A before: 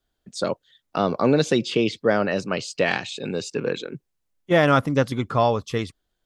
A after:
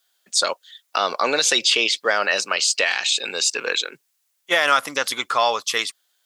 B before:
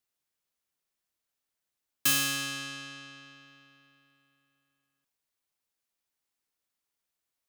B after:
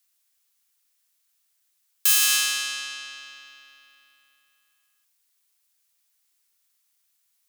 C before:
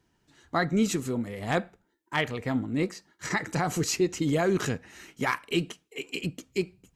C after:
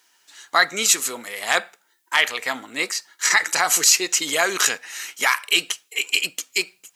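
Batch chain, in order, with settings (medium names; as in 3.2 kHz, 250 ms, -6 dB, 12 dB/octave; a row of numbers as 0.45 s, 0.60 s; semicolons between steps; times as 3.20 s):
Bessel high-pass 1.3 kHz, order 2; treble shelf 4.4 kHz +8 dB; peak limiter -17.5 dBFS; normalise loudness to -20 LUFS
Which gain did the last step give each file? +11.0 dB, +8.5 dB, +14.0 dB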